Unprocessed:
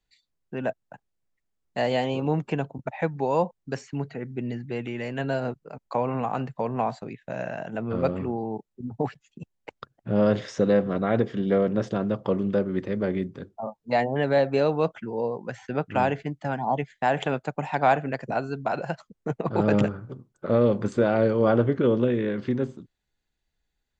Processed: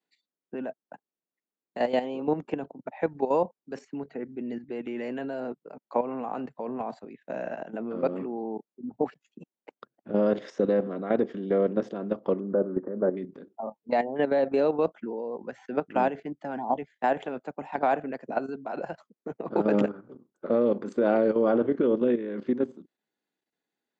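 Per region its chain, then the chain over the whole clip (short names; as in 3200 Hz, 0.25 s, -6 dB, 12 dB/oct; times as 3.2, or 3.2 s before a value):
12.4–13.17 steep low-pass 1600 Hz 48 dB/oct + dynamic EQ 600 Hz, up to +5 dB, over -36 dBFS, Q 2.6
whole clip: HPF 240 Hz 24 dB/oct; tilt -2.5 dB/oct; level quantiser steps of 11 dB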